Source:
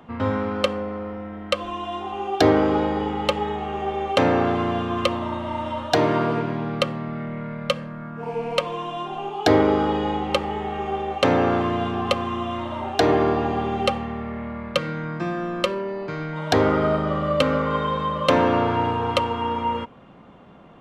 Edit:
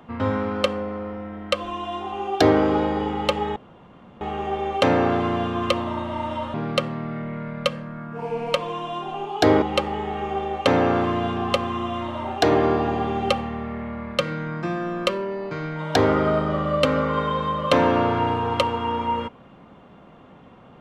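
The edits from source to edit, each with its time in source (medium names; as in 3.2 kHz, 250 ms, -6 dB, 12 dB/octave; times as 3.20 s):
3.56 s: insert room tone 0.65 s
5.89–6.58 s: delete
9.66–10.19 s: delete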